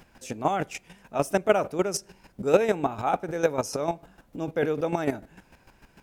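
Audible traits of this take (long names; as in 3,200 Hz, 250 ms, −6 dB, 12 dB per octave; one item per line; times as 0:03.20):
chopped level 6.7 Hz, depth 65%, duty 20%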